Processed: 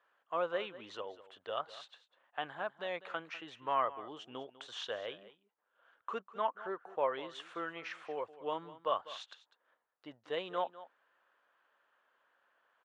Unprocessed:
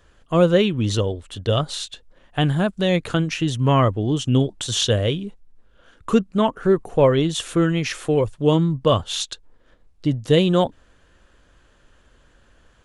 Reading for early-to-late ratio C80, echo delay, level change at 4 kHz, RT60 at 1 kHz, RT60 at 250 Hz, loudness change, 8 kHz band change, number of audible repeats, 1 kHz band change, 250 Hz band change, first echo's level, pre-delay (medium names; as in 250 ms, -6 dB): no reverb, 199 ms, -20.0 dB, no reverb, no reverb, -19.0 dB, -31.5 dB, 1, -10.5 dB, -30.5 dB, -16.5 dB, no reverb